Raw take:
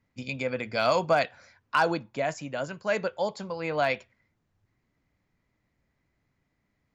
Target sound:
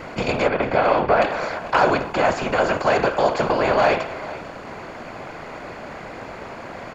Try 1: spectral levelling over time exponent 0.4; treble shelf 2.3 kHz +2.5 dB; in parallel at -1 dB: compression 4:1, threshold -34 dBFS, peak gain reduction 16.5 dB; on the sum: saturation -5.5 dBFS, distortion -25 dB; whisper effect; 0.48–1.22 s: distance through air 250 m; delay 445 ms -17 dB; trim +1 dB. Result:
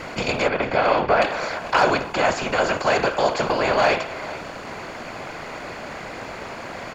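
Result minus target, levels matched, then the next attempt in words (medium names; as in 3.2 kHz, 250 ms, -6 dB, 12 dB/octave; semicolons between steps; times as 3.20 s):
compression: peak gain reduction +9 dB; 4 kHz band +4.5 dB
spectral levelling over time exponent 0.4; treble shelf 2.3 kHz -5.5 dB; in parallel at -1 dB: compression 4:1, threshold -23 dBFS, peak gain reduction 7 dB; on the sum: saturation -5.5 dBFS, distortion -25 dB; whisper effect; 0.48–1.22 s: distance through air 250 m; delay 445 ms -17 dB; trim +1 dB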